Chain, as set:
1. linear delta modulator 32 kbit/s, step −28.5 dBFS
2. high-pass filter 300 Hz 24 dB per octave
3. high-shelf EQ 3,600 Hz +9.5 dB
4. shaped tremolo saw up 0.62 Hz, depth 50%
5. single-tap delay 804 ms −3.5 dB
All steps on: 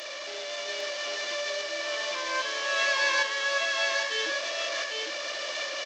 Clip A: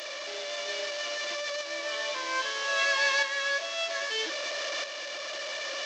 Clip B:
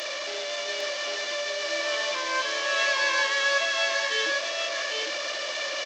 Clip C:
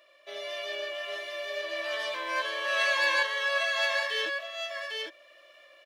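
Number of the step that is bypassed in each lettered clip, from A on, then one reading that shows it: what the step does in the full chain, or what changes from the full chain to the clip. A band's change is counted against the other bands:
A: 5, change in momentary loudness spread +2 LU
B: 4, change in integrated loudness +2.5 LU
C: 1, 8 kHz band −8.5 dB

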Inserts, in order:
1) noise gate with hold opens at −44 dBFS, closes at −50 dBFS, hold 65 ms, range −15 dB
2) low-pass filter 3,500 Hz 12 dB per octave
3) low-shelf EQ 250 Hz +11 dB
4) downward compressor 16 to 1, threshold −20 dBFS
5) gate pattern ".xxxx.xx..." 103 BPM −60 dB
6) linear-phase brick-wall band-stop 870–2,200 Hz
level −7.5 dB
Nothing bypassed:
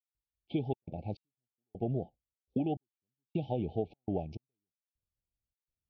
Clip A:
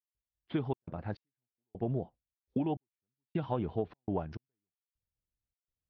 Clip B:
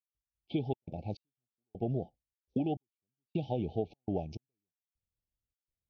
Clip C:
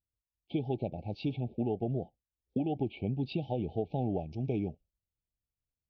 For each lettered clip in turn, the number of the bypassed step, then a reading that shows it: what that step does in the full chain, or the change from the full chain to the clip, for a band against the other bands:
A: 6, 2 kHz band +7.0 dB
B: 2, 4 kHz band +2.5 dB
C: 5, change in crest factor −3.0 dB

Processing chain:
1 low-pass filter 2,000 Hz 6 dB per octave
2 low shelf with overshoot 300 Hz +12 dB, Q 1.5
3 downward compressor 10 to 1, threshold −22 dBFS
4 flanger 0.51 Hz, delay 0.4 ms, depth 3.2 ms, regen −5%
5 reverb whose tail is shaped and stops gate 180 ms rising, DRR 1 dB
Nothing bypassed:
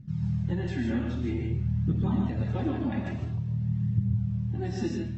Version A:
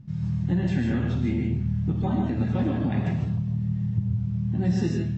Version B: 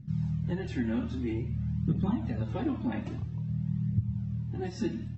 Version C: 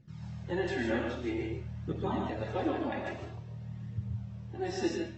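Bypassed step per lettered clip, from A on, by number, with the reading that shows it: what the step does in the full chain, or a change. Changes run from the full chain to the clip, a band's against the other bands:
4, change in crest factor −1.5 dB
5, change in integrated loudness −3.0 LU
2, 125 Hz band −15.5 dB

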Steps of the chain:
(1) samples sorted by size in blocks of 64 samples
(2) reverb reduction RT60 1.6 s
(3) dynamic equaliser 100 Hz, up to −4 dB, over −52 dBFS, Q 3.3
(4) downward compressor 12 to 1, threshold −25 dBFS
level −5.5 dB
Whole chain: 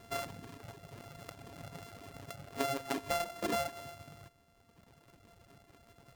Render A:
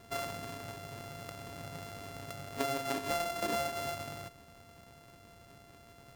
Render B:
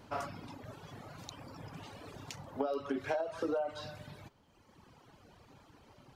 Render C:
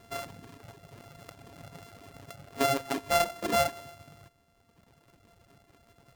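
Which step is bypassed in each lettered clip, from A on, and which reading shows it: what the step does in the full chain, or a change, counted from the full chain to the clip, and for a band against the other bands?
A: 2, change in momentary loudness spread +6 LU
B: 1, 8 kHz band −7.5 dB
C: 4, change in momentary loudness spread +5 LU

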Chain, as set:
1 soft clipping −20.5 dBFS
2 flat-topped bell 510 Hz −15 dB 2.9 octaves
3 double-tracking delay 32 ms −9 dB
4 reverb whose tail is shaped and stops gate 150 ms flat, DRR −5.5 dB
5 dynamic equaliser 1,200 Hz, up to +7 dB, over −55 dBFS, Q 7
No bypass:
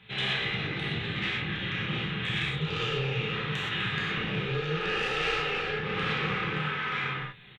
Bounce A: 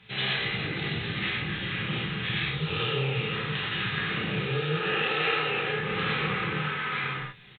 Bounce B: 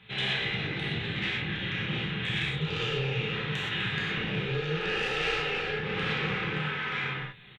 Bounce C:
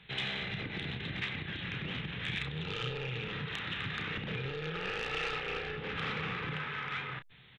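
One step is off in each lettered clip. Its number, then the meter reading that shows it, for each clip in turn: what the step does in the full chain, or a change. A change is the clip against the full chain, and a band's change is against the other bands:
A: 1, distortion level −16 dB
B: 5, 1 kHz band −2.5 dB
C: 4, change in integrated loudness −7.0 LU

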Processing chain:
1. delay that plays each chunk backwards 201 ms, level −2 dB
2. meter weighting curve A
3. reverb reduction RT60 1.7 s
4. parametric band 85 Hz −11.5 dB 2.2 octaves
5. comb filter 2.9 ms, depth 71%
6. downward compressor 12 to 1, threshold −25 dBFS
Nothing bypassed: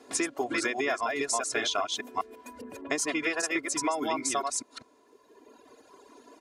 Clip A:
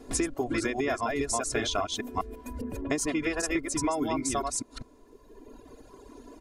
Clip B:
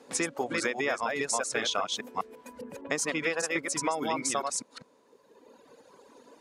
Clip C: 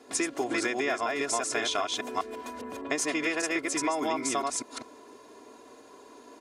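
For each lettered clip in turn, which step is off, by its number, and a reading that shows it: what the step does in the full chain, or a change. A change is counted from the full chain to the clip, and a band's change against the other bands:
2, 125 Hz band +15.0 dB
5, 125 Hz band +7.5 dB
3, change in momentary loudness spread −3 LU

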